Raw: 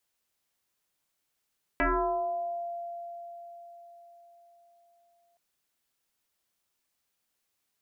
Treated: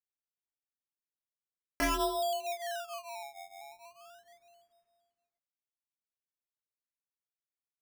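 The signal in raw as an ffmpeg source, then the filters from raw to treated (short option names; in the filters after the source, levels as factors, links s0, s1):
-f lavfi -i "aevalsrc='0.0794*pow(10,-3*t/4.75)*sin(2*PI*689*t+4.8*pow(10,-3*t/1.12)*sin(2*PI*0.47*689*t))':d=3.57:s=44100"
-af "agate=range=0.0224:threshold=0.00141:ratio=3:detection=peak,flanger=delay=17.5:depth=2.8:speed=1.1,acrusher=samples=20:mix=1:aa=0.000001:lfo=1:lforange=20:lforate=0.36"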